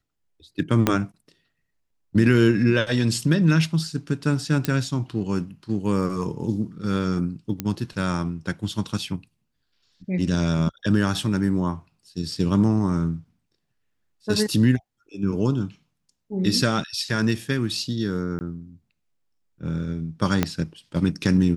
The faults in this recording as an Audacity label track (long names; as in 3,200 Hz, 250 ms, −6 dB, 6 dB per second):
0.870000	0.870000	click −4 dBFS
4.650000	4.650000	click −7 dBFS
7.600000	7.600000	click −11 dBFS
18.390000	18.410000	drop-out 19 ms
20.430000	20.430000	click −6 dBFS